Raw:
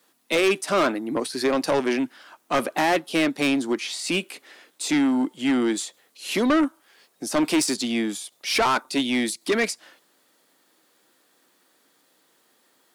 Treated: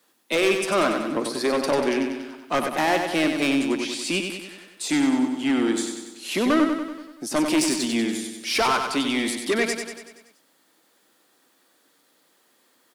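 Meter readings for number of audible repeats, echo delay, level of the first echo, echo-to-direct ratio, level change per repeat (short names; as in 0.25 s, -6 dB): 6, 95 ms, -6.0 dB, -4.5 dB, -5.0 dB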